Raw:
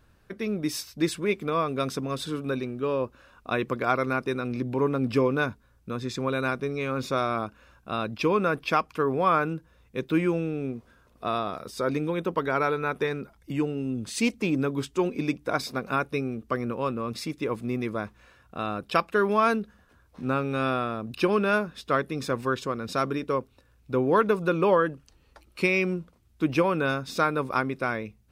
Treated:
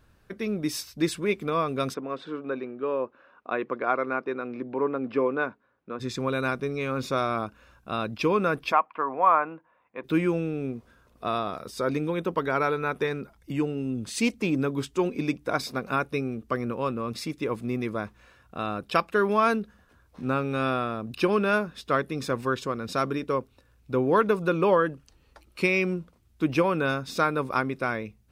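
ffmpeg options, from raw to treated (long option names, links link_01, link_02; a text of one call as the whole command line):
ffmpeg -i in.wav -filter_complex "[0:a]asplit=3[link_01][link_02][link_03];[link_01]afade=type=out:start_time=1.93:duration=0.02[link_04];[link_02]highpass=300,lowpass=2000,afade=type=in:start_time=1.93:duration=0.02,afade=type=out:start_time=5.99:duration=0.02[link_05];[link_03]afade=type=in:start_time=5.99:duration=0.02[link_06];[link_04][link_05][link_06]amix=inputs=3:normalize=0,asplit=3[link_07][link_08][link_09];[link_07]afade=type=out:start_time=8.71:duration=0.02[link_10];[link_08]highpass=410,equalizer=frequency=410:width_type=q:width=4:gain=-9,equalizer=frequency=700:width_type=q:width=4:gain=4,equalizer=frequency=990:width_type=q:width=4:gain=8,equalizer=frequency=1500:width_type=q:width=4:gain=-3,lowpass=frequency=2300:width=0.5412,lowpass=frequency=2300:width=1.3066,afade=type=in:start_time=8.71:duration=0.02,afade=type=out:start_time=10.03:duration=0.02[link_11];[link_09]afade=type=in:start_time=10.03:duration=0.02[link_12];[link_10][link_11][link_12]amix=inputs=3:normalize=0" out.wav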